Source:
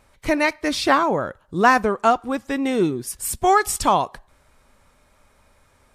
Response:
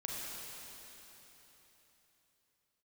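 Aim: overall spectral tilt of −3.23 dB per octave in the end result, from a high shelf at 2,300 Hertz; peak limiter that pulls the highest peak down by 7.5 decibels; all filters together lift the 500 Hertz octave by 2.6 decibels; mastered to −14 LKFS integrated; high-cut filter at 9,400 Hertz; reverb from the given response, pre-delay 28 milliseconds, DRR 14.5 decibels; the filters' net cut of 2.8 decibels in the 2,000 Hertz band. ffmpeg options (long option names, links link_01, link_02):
-filter_complex "[0:a]lowpass=9400,equalizer=frequency=500:width_type=o:gain=3.5,equalizer=frequency=2000:width_type=o:gain=-7,highshelf=frequency=2300:gain=7,alimiter=limit=-9dB:level=0:latency=1,asplit=2[link_01][link_02];[1:a]atrim=start_sample=2205,adelay=28[link_03];[link_02][link_03]afir=irnorm=-1:irlink=0,volume=-16dB[link_04];[link_01][link_04]amix=inputs=2:normalize=0,volume=7dB"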